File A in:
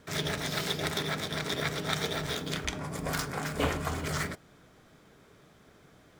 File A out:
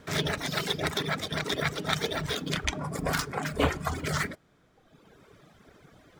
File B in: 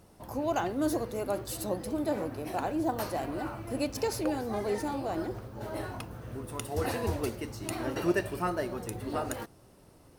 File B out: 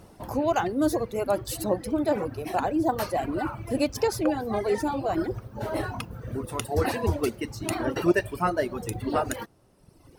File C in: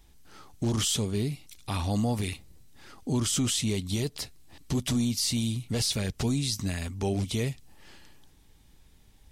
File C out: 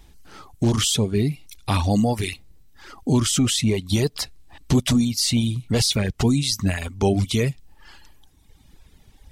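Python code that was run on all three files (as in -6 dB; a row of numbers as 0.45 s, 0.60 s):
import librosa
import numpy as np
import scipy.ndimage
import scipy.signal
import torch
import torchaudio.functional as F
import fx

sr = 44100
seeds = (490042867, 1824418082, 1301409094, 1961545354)

p1 = fx.dereverb_blind(x, sr, rt60_s=1.4)
p2 = fx.high_shelf(p1, sr, hz=5100.0, db=-4.5)
p3 = fx.rider(p2, sr, range_db=3, speed_s=0.5)
p4 = p2 + (p3 * librosa.db_to_amplitude(-1.0))
y = librosa.util.normalize(p4) * 10.0 ** (-9 / 20.0)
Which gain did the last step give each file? -0.5 dB, +2.0 dB, +4.5 dB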